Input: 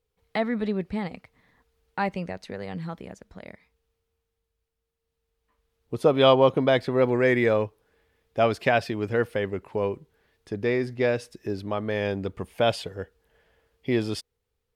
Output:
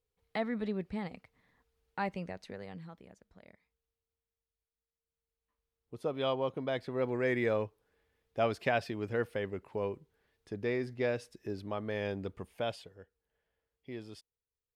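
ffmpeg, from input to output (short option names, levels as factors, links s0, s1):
-af "volume=0.841,afade=t=out:st=2.47:d=0.43:silence=0.446684,afade=t=in:st=6.55:d=1:silence=0.473151,afade=t=out:st=12.28:d=0.66:silence=0.298538"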